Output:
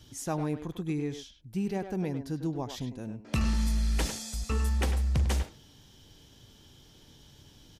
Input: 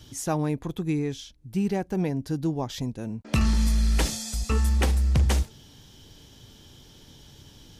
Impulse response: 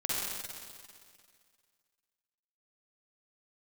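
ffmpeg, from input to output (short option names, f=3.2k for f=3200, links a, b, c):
-filter_complex "[0:a]asplit=2[a][b];[b]adelay=100,highpass=300,lowpass=3.4k,asoftclip=type=hard:threshold=-23dB,volume=-7dB[c];[a][c]amix=inputs=2:normalize=0,volume=-5.5dB"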